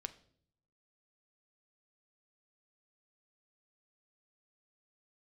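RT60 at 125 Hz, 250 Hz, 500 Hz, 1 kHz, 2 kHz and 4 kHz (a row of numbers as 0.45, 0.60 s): 1.1, 0.90, 0.70, 0.50, 0.45, 0.50 s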